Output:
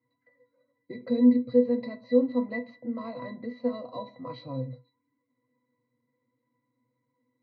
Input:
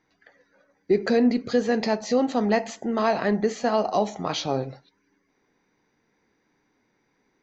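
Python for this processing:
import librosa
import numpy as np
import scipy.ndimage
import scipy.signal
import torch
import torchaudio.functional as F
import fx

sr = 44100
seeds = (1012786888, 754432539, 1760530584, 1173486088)

y = scipy.signal.sosfilt(scipy.signal.ellip(3, 1.0, 40, [110.0, 4700.0], 'bandpass', fs=sr, output='sos'), x)
y = fx.octave_resonator(y, sr, note='B', decay_s=0.15)
y = y * librosa.db_to_amplitude(4.0)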